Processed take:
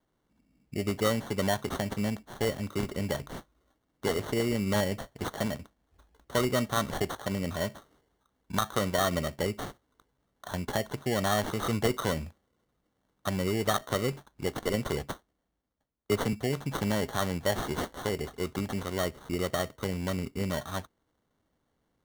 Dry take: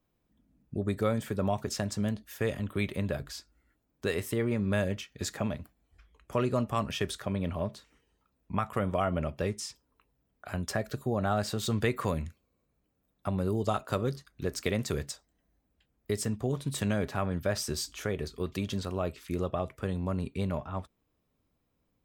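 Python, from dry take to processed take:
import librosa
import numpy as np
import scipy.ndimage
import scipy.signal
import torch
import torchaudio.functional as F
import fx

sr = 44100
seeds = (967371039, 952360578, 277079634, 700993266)

y = fx.low_shelf(x, sr, hz=150.0, db=-6.5)
y = fx.sample_hold(y, sr, seeds[0], rate_hz=2500.0, jitter_pct=0)
y = fx.band_widen(y, sr, depth_pct=40, at=(15.02, 16.33))
y = y * 10.0 ** (2.5 / 20.0)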